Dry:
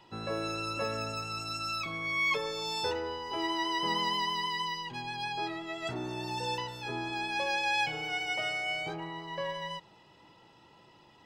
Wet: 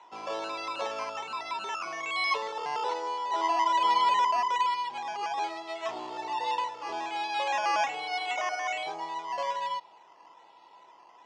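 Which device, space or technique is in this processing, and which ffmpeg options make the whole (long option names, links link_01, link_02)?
circuit-bent sampling toy: -af "acrusher=samples=9:mix=1:aa=0.000001:lfo=1:lforange=5.4:lforate=1.2,highpass=470,equalizer=frequency=710:width_type=q:width=4:gain=7,equalizer=frequency=1000:width_type=q:width=4:gain=10,equalizer=frequency=1500:width_type=q:width=4:gain=-5,lowpass=frequency=5800:width=0.5412,lowpass=frequency=5800:width=1.3066"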